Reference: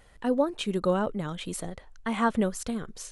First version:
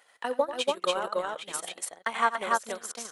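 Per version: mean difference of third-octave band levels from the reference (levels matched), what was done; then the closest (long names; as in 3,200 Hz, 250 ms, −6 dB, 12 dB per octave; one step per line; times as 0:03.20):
9.0 dB: high-pass filter 710 Hz 12 dB per octave
on a send: loudspeakers that aren't time-aligned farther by 30 metres −6 dB, 98 metres −1 dB
on the sum: transient designer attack +6 dB, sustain −10 dB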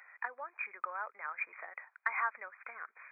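15.0 dB: linear-phase brick-wall low-pass 2,500 Hz
downward compressor 4 to 1, threshold −33 dBFS, peak gain reduction 12.5 dB
Bessel high-pass filter 1,600 Hz, order 4
level +10.5 dB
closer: first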